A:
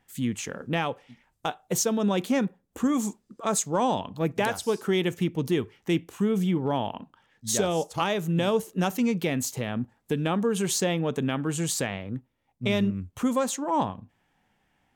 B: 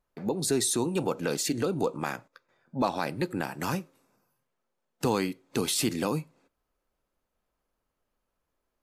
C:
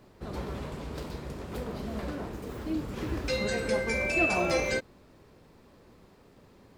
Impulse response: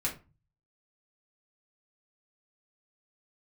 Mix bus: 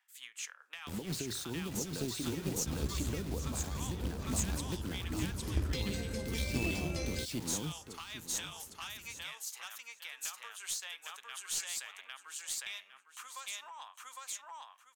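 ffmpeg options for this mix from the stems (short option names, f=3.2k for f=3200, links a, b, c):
-filter_complex "[0:a]highpass=f=1.1k:w=0.5412,highpass=f=1.1k:w=1.3066,asoftclip=type=hard:threshold=-20dB,volume=-4.5dB,asplit=3[a][b][c];[b]volume=-23dB[d];[c]volume=-4dB[e];[1:a]lowpass=5.2k,acrusher=bits=5:mix=0:aa=0.000001,adelay=700,volume=-4dB,asplit=2[f][g];[g]volume=-5.5dB[h];[2:a]adelay=2450,volume=-6.5dB[i];[a][f]amix=inputs=2:normalize=0,tremolo=f=4.4:d=0.68,alimiter=level_in=4.5dB:limit=-24dB:level=0:latency=1:release=98,volume=-4.5dB,volume=0dB[j];[3:a]atrim=start_sample=2205[k];[d][k]afir=irnorm=-1:irlink=0[l];[e][h]amix=inputs=2:normalize=0,aecho=0:1:806|1612|2418:1|0.2|0.04[m];[i][j][l][m]amix=inputs=4:normalize=0,equalizer=f=77:t=o:w=0.93:g=12,acrossover=split=340|3000[n][o][p];[o]acompressor=threshold=-47dB:ratio=5[q];[n][q][p]amix=inputs=3:normalize=0,aeval=exprs='0.1*(cos(1*acos(clip(val(0)/0.1,-1,1)))-cos(1*PI/2))+0.00794*(cos(4*acos(clip(val(0)/0.1,-1,1)))-cos(4*PI/2))+0.0224*(cos(6*acos(clip(val(0)/0.1,-1,1)))-cos(6*PI/2))+0.0112*(cos(8*acos(clip(val(0)/0.1,-1,1)))-cos(8*PI/2))':c=same"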